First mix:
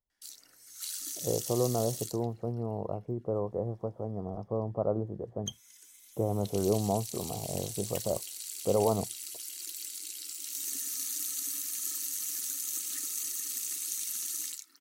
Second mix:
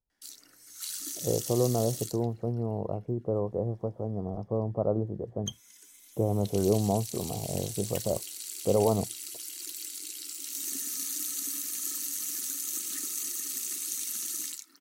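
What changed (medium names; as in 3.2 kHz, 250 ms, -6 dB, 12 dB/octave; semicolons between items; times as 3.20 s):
background +5.0 dB; master: add tilt shelf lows +4 dB, about 870 Hz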